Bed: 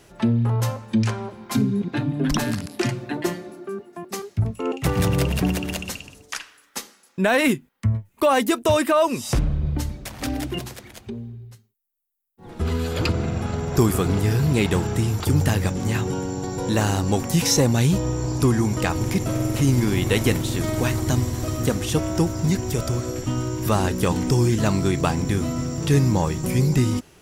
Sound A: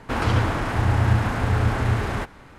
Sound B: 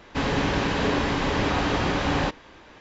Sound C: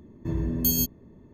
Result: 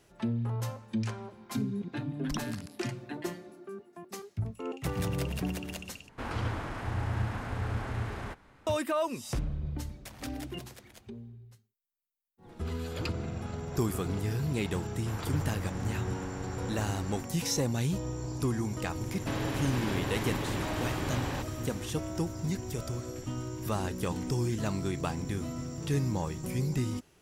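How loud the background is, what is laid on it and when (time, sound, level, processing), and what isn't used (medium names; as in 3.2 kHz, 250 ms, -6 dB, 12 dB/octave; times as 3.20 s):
bed -11.5 dB
6.09 s: replace with A -12.5 dB
14.97 s: add A -18 dB
19.12 s: add B -2 dB + compression, threshold -30 dBFS
not used: C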